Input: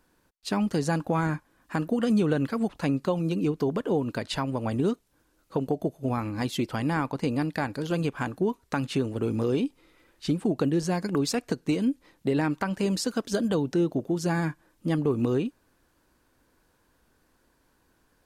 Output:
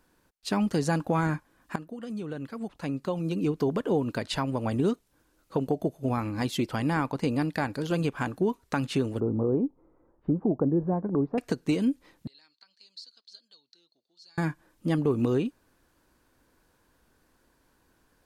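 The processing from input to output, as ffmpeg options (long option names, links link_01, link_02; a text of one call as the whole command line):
ffmpeg -i in.wav -filter_complex "[0:a]asettb=1/sr,asplit=3[link_01][link_02][link_03];[link_01]atrim=end=9.204[link_04];[link_02]atrim=start=9.2:end=11.38,asetpts=PTS-STARTPTS,afade=type=in:duration=0.004:curve=qsin,afade=type=out:start_time=2.176:duration=0.004:curve=qsin,lowpass=frequency=1000:width=0.5412,lowpass=frequency=1000:width=1.3066[link_05];[link_03]atrim=start=11.376[link_06];[link_04][link_05]acrossfade=duration=0.004:curve1=hsin:curve2=qsin[link_07];[link_07][link_06]acrossfade=duration=0.004:curve1=qsin:curve2=hsin,asettb=1/sr,asplit=3[link_08][link_09][link_10];[link_08]atrim=end=12.274[link_11];[link_09]atrim=start=12.27:end=14.38,asetpts=PTS-STARTPTS,afade=type=in:duration=0.004:curve=qsin,afade=type=out:start_time=2.106:duration=0.004:curve=qsin,bandpass=frequency=4300:width_type=q:width=17[link_12];[link_10]atrim=start=14.376[link_13];[link_11][link_12]acrossfade=duration=0.004:curve1=hsin:curve2=qsin[link_14];[link_14][link_13]acrossfade=duration=0.004:curve1=qsin:curve2=hsin,asplit=2[link_15][link_16];[link_15]atrim=end=1.76,asetpts=PTS-STARTPTS,afade=type=out:start_time=1.756:duration=0.004:curve=hsin:silence=0.199526[link_17];[link_16]atrim=start=1.76,asetpts=PTS-STARTPTS,afade=type=in:duration=1.83:curve=qua:silence=0.199526[link_18];[link_17][link_18]concat=n=2:v=0:a=1" out.wav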